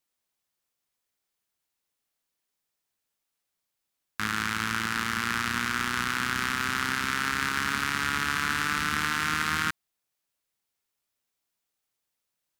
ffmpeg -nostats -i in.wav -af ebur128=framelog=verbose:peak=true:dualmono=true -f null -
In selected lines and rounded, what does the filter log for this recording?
Integrated loudness:
  I:         -24.3 LUFS
  Threshold: -34.5 LUFS
Loudness range:
  LRA:         8.1 LU
  Threshold: -45.9 LUFS
  LRA low:   -31.9 LUFS
  LRA high:  -23.8 LUFS
True peak:
  Peak:       -9.1 dBFS